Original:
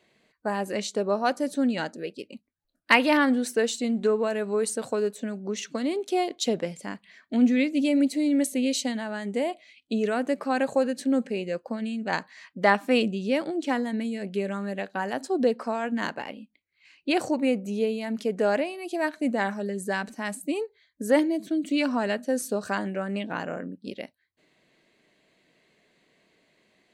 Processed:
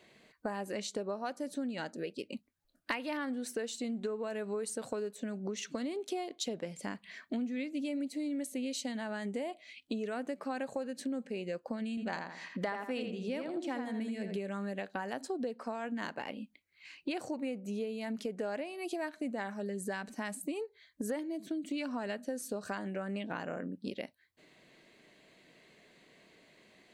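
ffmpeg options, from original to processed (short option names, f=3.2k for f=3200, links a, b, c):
-filter_complex "[0:a]asettb=1/sr,asplit=3[a][b][c];[a]atrim=end=11.894[d];[b]atrim=start=11.89:end=14.38,asetpts=PTS-STARTPTS,afade=t=in:d=0.004:c=qsin,afade=t=out:st=2.486:d=0.004:c=qsin,asplit=2[e][f];[f]adelay=82,lowpass=f=2.6k:p=1,volume=-5dB,asplit=2[g][h];[h]adelay=82,lowpass=f=2.6k:p=1,volume=0.3,asplit=2[i][j];[j]adelay=82,lowpass=f=2.6k:p=1,volume=0.3,asplit=2[k][l];[l]adelay=82,lowpass=f=2.6k:p=1,volume=0.3[m];[e][g][i][k][m]amix=inputs=5:normalize=0,atrim=end_sample=109809[n];[c]atrim=start=14.376[o];[d][n]acrossfade=d=0.004:c1=hsin:c2=qsin[p];[p][o]acrossfade=d=0.004:c1=qsin:c2=hsin,acompressor=threshold=-39dB:ratio=6,volume=3.5dB"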